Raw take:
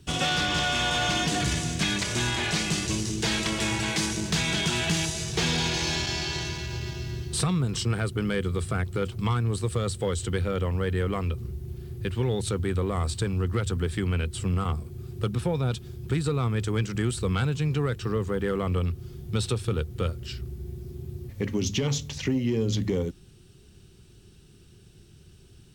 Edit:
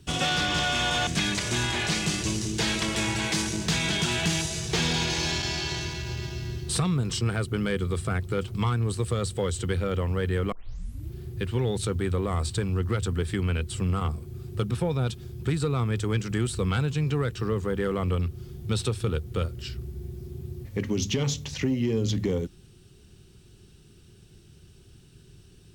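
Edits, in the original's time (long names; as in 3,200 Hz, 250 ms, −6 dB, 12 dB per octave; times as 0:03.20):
0:01.07–0:01.71: remove
0:11.16: tape start 0.61 s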